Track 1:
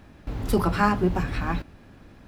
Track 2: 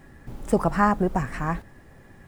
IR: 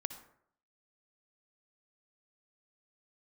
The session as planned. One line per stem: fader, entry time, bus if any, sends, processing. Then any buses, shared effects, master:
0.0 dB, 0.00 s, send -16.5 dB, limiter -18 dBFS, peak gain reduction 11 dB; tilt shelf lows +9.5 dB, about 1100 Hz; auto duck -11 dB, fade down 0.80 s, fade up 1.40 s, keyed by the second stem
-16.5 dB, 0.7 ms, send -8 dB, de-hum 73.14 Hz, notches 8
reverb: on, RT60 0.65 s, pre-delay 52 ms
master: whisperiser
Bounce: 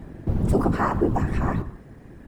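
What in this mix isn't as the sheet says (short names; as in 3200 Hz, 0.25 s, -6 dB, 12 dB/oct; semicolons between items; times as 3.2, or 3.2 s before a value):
stem 2 -16.5 dB -> -9.0 dB; reverb return +8.0 dB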